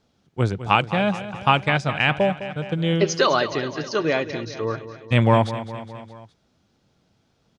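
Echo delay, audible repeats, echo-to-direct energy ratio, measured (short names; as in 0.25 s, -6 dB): 0.207 s, 4, -11.0 dB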